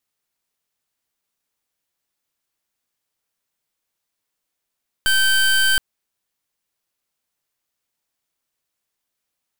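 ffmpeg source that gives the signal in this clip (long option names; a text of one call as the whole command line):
ffmpeg -f lavfi -i "aevalsrc='0.158*(2*lt(mod(1550*t,1),0.25)-1)':duration=0.72:sample_rate=44100" out.wav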